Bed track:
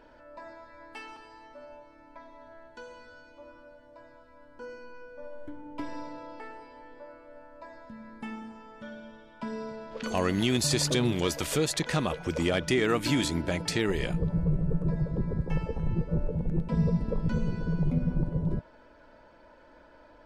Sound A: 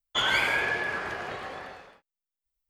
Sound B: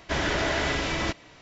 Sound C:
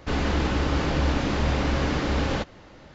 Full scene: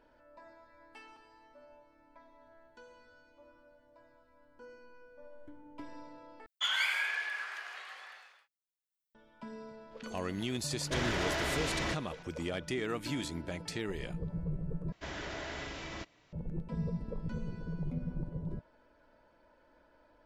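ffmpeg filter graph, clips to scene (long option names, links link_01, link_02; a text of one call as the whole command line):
ffmpeg -i bed.wav -i cue0.wav -i cue1.wav -filter_complex "[2:a]asplit=2[link_01][link_02];[0:a]volume=-10dB[link_03];[1:a]highpass=1500[link_04];[link_01]asoftclip=type=tanh:threshold=-25dB[link_05];[link_03]asplit=3[link_06][link_07][link_08];[link_06]atrim=end=6.464[link_09];[link_04]atrim=end=2.69,asetpts=PTS-STARTPTS,volume=-4.5dB[link_10];[link_07]atrim=start=9.146:end=14.924[link_11];[link_02]atrim=end=1.41,asetpts=PTS-STARTPTS,volume=-15dB[link_12];[link_08]atrim=start=16.326[link_13];[link_05]atrim=end=1.41,asetpts=PTS-STARTPTS,volume=-4dB,afade=type=in:duration=0.004:curve=hsin,afade=type=out:start_time=1.406:duration=0.004:curve=hsin,adelay=477162S[link_14];[link_09][link_10]acrossfade=duration=0.004:curve1=hsin:curve2=hsin[link_15];[link_15][link_11]acrossfade=duration=0.004:curve1=hsin:curve2=hsin[link_16];[link_16][link_12]acrossfade=duration=0.004:curve1=hsin:curve2=hsin[link_17];[link_17][link_13]acrossfade=duration=0.004:curve1=hsin:curve2=hsin[link_18];[link_18][link_14]amix=inputs=2:normalize=0" out.wav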